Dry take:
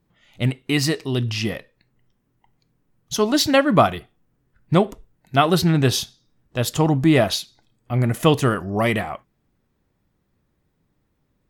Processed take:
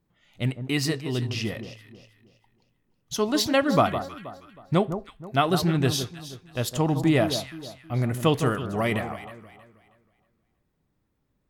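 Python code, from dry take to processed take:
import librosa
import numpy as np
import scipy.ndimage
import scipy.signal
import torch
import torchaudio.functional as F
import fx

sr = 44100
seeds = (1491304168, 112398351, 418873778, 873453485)

y = fx.echo_alternate(x, sr, ms=159, hz=1300.0, feedback_pct=56, wet_db=-9)
y = y * 10.0 ** (-5.5 / 20.0)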